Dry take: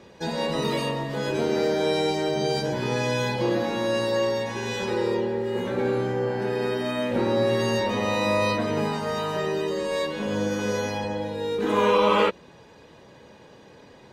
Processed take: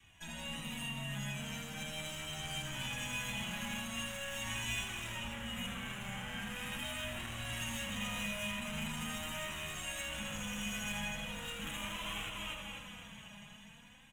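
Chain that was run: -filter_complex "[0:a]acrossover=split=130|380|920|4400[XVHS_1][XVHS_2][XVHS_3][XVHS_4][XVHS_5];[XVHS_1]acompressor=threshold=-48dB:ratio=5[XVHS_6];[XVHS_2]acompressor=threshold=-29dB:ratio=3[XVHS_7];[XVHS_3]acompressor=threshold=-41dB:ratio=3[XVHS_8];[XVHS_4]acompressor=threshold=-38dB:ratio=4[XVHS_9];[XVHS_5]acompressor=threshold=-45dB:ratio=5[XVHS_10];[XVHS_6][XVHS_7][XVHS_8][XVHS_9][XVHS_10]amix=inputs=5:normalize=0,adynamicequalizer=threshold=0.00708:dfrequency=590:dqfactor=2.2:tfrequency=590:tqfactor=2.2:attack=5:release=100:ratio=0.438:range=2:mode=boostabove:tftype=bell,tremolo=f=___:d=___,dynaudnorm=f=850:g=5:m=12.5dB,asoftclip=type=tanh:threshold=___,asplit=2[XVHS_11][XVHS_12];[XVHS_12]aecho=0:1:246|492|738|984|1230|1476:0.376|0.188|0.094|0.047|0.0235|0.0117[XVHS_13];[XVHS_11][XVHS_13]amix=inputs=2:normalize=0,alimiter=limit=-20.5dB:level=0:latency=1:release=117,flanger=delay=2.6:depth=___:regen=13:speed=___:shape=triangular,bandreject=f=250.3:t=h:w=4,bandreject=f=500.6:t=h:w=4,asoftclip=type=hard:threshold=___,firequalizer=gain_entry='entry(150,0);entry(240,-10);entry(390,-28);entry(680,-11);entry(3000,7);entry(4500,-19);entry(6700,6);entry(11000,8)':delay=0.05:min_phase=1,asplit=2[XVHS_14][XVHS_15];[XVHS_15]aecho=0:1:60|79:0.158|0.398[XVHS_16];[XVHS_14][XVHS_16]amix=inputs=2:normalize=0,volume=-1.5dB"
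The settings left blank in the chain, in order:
170, 0.571, -16dB, 2.4, 0.41, -29dB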